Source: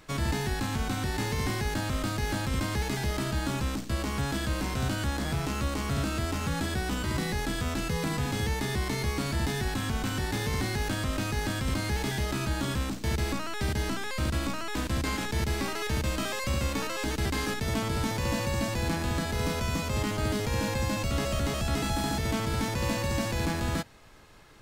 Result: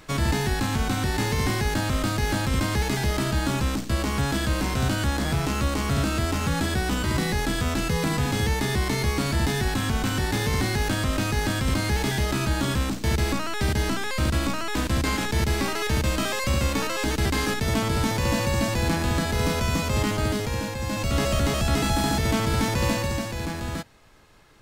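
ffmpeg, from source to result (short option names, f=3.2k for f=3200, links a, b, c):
-af "volume=13.5dB,afade=t=out:st=20.09:d=0.68:silence=0.421697,afade=t=in:st=20.77:d=0.44:silence=0.398107,afade=t=out:st=22.84:d=0.44:silence=0.446684"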